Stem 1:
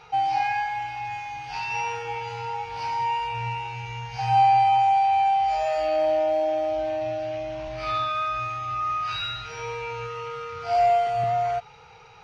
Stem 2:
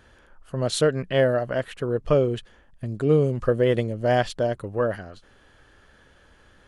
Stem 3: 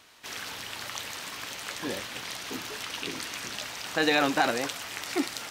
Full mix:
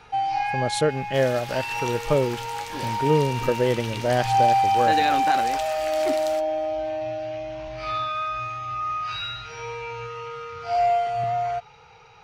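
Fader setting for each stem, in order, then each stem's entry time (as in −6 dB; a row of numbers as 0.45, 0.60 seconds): −1.0, −1.5, −2.0 decibels; 0.00, 0.00, 0.90 seconds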